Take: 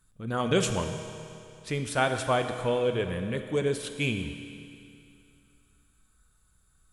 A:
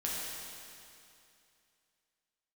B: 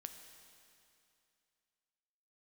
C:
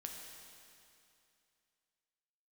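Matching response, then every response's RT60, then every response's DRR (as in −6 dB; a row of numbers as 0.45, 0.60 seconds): B; 2.6, 2.6, 2.6 seconds; −6.0, 6.0, 1.0 decibels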